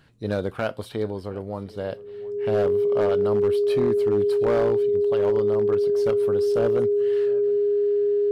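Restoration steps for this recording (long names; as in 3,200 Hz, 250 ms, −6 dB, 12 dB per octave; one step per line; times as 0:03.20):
clipped peaks rebuilt −15.5 dBFS
notch filter 410 Hz, Q 30
echo removal 714 ms −22 dB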